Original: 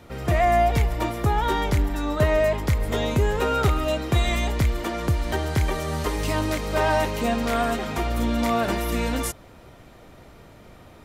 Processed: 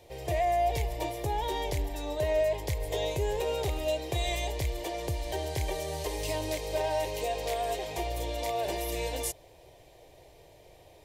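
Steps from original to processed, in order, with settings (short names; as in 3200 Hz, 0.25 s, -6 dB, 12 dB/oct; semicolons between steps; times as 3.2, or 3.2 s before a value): low shelf 180 Hz -7 dB; limiter -15.5 dBFS, peak gain reduction 5 dB; fixed phaser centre 550 Hz, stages 4; gain -2.5 dB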